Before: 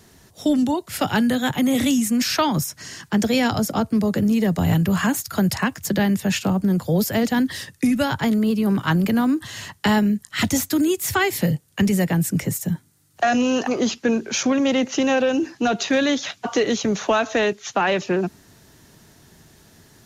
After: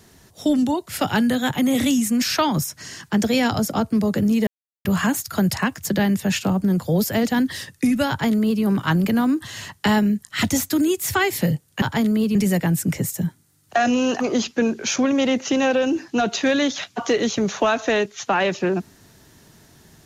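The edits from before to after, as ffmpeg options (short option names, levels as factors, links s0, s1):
-filter_complex "[0:a]asplit=5[s0][s1][s2][s3][s4];[s0]atrim=end=4.47,asetpts=PTS-STARTPTS,afade=t=out:st=4.466:d=0.004:c=hsin[s5];[s1]atrim=start=4.47:end=4.85,asetpts=PTS-STARTPTS,volume=0[s6];[s2]atrim=start=4.85:end=11.822,asetpts=PTS-STARTPTS,afade=t=in:d=0.004:c=hsin[s7];[s3]atrim=start=8.088:end=8.622[s8];[s4]atrim=start=11.818[s9];[s5][s6][s7]concat=n=3:v=0:a=1[s10];[s10][s8]acrossfade=d=0.004:c1=hsin:c2=hsin[s11];[s11][s9]acrossfade=d=0.004:c1=hsin:c2=hsin"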